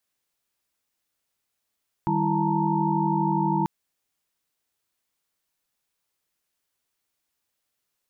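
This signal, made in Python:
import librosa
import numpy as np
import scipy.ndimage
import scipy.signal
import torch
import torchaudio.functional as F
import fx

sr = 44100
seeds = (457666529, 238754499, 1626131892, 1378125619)

y = fx.chord(sr, length_s=1.59, notes=(51, 55, 64, 81, 82), wave='sine', level_db=-27.0)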